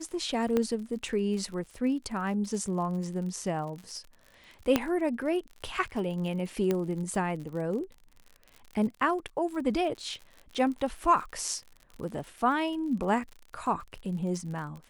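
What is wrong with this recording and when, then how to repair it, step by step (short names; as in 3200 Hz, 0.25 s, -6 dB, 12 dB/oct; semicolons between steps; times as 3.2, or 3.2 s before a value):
crackle 50/s -38 dBFS
0.57 pop -15 dBFS
4.76 pop -9 dBFS
6.71 pop -15 dBFS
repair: de-click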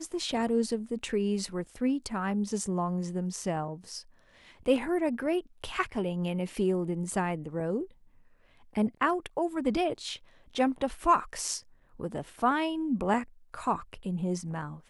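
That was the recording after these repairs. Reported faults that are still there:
4.76 pop
6.71 pop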